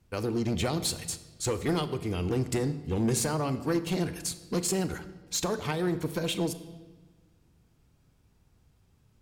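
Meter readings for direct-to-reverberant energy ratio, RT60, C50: 11.0 dB, 1.3 s, 13.0 dB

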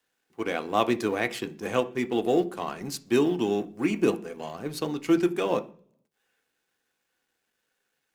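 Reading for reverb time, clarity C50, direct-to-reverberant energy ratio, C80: 0.50 s, 18.5 dB, 7.5 dB, 23.0 dB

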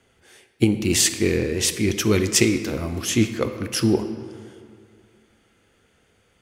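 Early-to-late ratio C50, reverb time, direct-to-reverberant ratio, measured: 10.0 dB, 2.1 s, 8.5 dB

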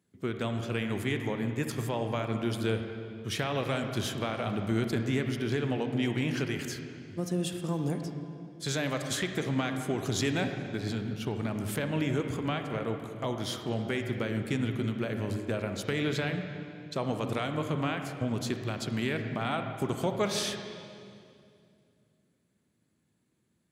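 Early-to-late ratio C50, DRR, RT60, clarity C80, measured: 6.0 dB, 5.5 dB, 2.4 s, 7.0 dB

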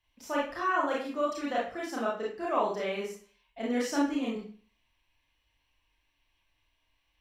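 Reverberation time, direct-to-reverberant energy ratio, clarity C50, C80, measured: 0.45 s, -5.5 dB, 3.5 dB, 9.0 dB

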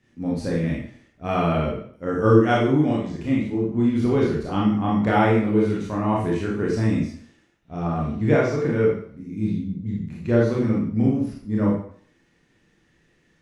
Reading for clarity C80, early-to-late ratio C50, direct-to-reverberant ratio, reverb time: 5.5 dB, 1.5 dB, -5.0 dB, 0.55 s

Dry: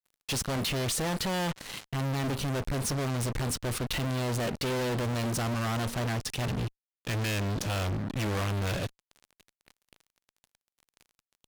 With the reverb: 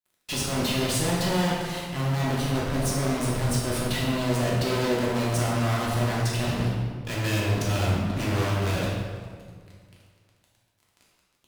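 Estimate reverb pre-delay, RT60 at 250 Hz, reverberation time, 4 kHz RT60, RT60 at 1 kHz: 3 ms, 2.1 s, 1.8 s, 1.2 s, 1.7 s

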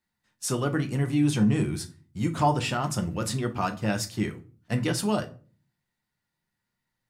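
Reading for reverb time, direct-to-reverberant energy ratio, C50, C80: 0.40 s, 5.0 dB, 16.0 dB, 21.5 dB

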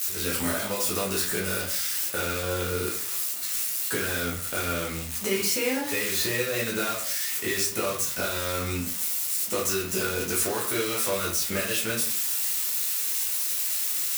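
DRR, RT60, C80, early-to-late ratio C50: -5.5 dB, 0.50 s, 10.0 dB, 5.0 dB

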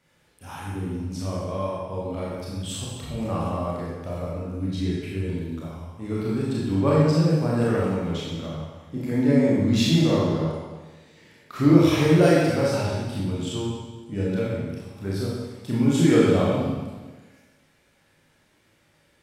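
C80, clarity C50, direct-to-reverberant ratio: 1.0 dB, -2.0 dB, -6.5 dB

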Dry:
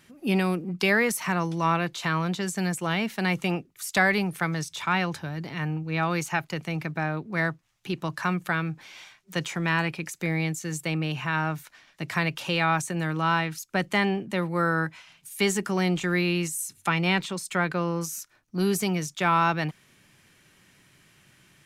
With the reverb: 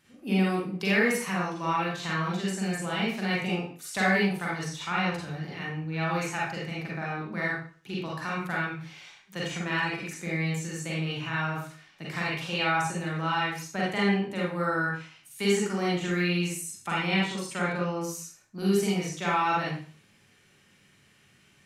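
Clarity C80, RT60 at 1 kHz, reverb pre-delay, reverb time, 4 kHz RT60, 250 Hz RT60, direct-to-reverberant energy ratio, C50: 5.5 dB, 0.40 s, 36 ms, 0.45 s, 0.40 s, 0.40 s, -6.0 dB, 0.0 dB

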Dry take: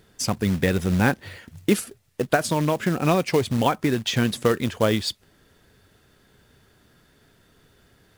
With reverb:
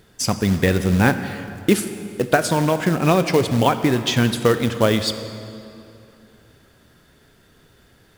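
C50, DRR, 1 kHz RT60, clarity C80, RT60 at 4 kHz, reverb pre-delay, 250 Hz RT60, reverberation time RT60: 10.5 dB, 10.0 dB, 2.7 s, 11.0 dB, 2.0 s, 27 ms, 2.9 s, 2.7 s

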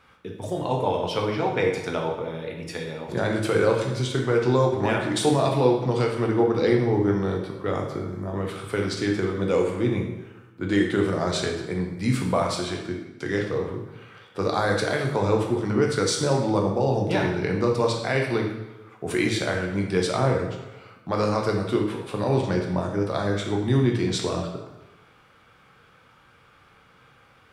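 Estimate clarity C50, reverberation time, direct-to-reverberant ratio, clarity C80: 4.5 dB, 1.1 s, 0.0 dB, 7.5 dB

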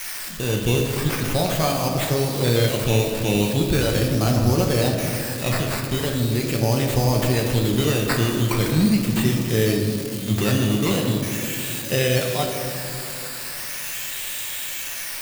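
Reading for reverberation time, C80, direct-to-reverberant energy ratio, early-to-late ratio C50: 2.6 s, 4.5 dB, 0.0 dB, 3.5 dB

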